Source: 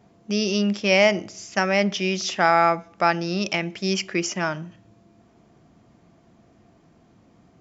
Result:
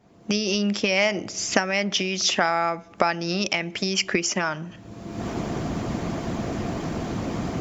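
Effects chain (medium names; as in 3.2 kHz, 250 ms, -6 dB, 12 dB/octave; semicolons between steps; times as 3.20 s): recorder AGC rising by 37 dB/s; harmonic-percussive split percussive +7 dB; trim -6 dB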